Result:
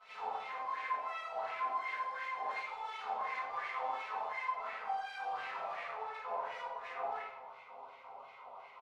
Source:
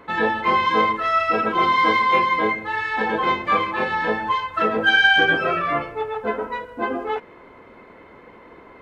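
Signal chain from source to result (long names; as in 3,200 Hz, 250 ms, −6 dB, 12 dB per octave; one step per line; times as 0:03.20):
lower of the sound and its delayed copy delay 7.5 ms
low-pass filter 4,800 Hz
reversed playback
downward compressor, threshold −28 dBFS, peak gain reduction 14.5 dB
reversed playback
granular cloud 100 ms, grains 20 per second, spray 15 ms, pitch spread up and down by 0 semitones
double-tracking delay 44 ms −3 dB
half-wave rectification
phaser with its sweep stopped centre 720 Hz, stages 4
soft clipping −35 dBFS, distortion −11 dB
on a send: backwards echo 81 ms −9 dB
on the sum: LFO wah 2.8 Hz 750–2,200 Hz, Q 5.3
rectangular room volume 210 cubic metres, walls mixed, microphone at 1.9 metres
level +7 dB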